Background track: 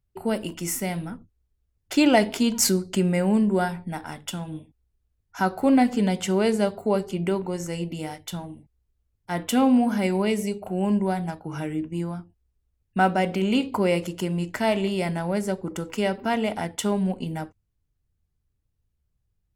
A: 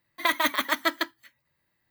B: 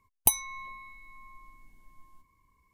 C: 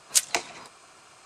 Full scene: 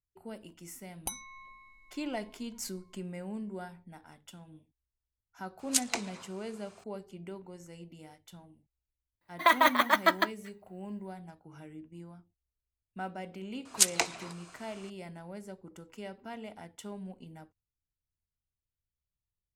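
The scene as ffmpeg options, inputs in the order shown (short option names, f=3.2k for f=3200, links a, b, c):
-filter_complex "[3:a]asplit=2[a][b];[0:a]volume=-18.5dB[c];[2:a]lowpass=8.8k[d];[1:a]equalizer=f=820:w=0.6:g=10.5[e];[d]atrim=end=2.73,asetpts=PTS-STARTPTS,volume=-9dB,afade=t=in:d=0.004:c=hsin,afade=t=out:st=2.726:d=0.004:c=hsin,adelay=800[f];[a]atrim=end=1.25,asetpts=PTS-STARTPTS,volume=-6.5dB,afade=t=in:d=0.004:c=hsin,afade=t=out:st=1.246:d=0.004:c=hsin,adelay=5590[g];[e]atrim=end=1.9,asetpts=PTS-STARTPTS,volume=-5.5dB,afade=t=in:d=0.004:c=hsin,afade=t=out:st=1.896:d=0.004:c=hsin,adelay=9210[h];[b]atrim=end=1.25,asetpts=PTS-STARTPTS,volume=-2dB,afade=t=in:d=0.004:c=hsin,afade=t=out:st=1.246:d=0.004:c=hsin,adelay=13650[i];[c][f][g][h][i]amix=inputs=5:normalize=0"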